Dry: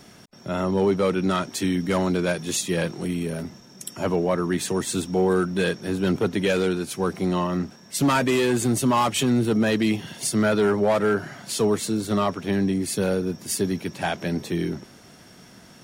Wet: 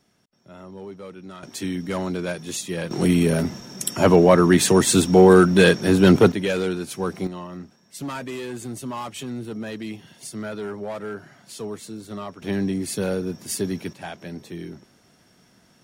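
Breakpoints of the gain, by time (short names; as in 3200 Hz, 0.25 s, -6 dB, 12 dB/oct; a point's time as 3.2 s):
-17 dB
from 1.43 s -4 dB
from 2.91 s +9 dB
from 6.32 s -1.5 dB
from 7.27 s -11 dB
from 12.42 s -1.5 dB
from 13.93 s -9 dB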